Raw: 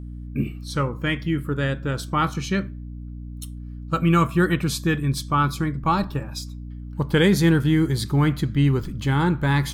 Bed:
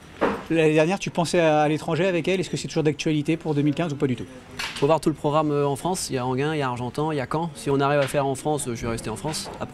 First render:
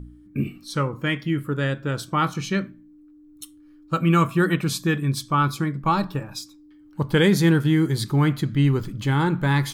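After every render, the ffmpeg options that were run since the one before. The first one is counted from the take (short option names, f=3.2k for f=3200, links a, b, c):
-af "bandreject=f=60:t=h:w=4,bandreject=f=120:t=h:w=4,bandreject=f=180:t=h:w=4,bandreject=f=240:t=h:w=4"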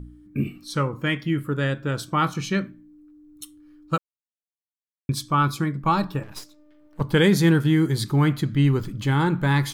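-filter_complex "[0:a]asettb=1/sr,asplit=3[a][b][c];[a]atrim=end=6.234[d];[b]atrim=start=6.23:end=7.01,asetpts=PTS-STARTPTS,afade=t=in:d=0.004:c=qsin,afade=t=out:st=0.776:d=0.004:c=qsin,aeval=exprs='max(val(0),0)':c=same[e];[c]atrim=start=7.006[f];[d][e]acrossfade=d=0.004:c1=hsin:c2=qsin[g];[g][f]acrossfade=d=0.004:c1=qsin:c2=hsin,asplit=3[h][i][j];[h]atrim=end=3.98,asetpts=PTS-STARTPTS,afade=t=out:st=3.976:d=0.004:c=hsin[k];[i]atrim=start=3.98:end=5.09,asetpts=PTS-STARTPTS,volume=0[l];[j]atrim=start=5.09,asetpts=PTS-STARTPTS,afade=t=in:d=0.004:c=hsin[m];[k][l][m]concat=n=3:v=0:a=1"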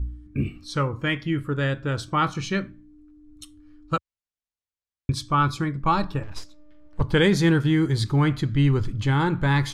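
-af "lowpass=7.4k,lowshelf=f=110:t=q:w=1.5:g=11"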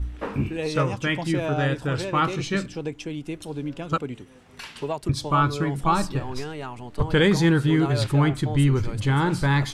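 -filter_complex "[1:a]volume=-9.5dB[a];[0:a][a]amix=inputs=2:normalize=0"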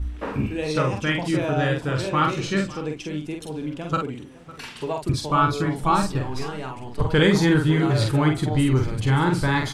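-filter_complex "[0:a]asplit=2[a][b];[b]adelay=46,volume=-4dB[c];[a][c]amix=inputs=2:normalize=0,asplit=2[d][e];[e]adelay=553.9,volume=-18dB,highshelf=f=4k:g=-12.5[f];[d][f]amix=inputs=2:normalize=0"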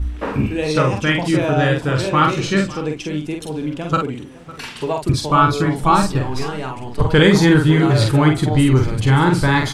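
-af "volume=6dB,alimiter=limit=-1dB:level=0:latency=1"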